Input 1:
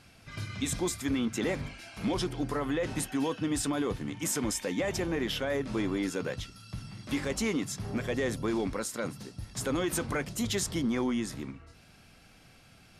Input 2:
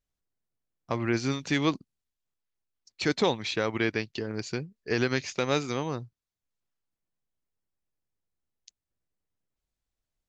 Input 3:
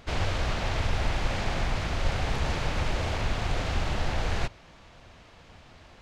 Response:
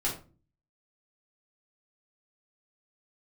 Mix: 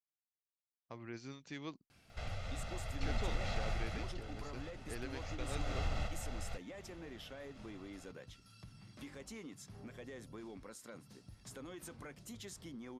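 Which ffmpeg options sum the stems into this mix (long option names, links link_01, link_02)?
-filter_complex "[0:a]acompressor=threshold=-45dB:ratio=2,adelay=1900,volume=-9.5dB[link_01];[1:a]agate=range=-33dB:threshold=-41dB:ratio=3:detection=peak,volume=-20dB,asplit=2[link_02][link_03];[2:a]aecho=1:1:1.5:0.83,acompressor=threshold=-35dB:ratio=2,adelay=2100,volume=6dB,afade=type=out:start_time=3.65:duration=0.59:silence=0.298538,afade=type=in:start_time=5.14:duration=0.67:silence=0.298538[link_04];[link_03]apad=whole_len=357949[link_05];[link_04][link_05]sidechaingate=range=-6dB:threshold=-60dB:ratio=16:detection=peak[link_06];[link_01][link_02][link_06]amix=inputs=3:normalize=0"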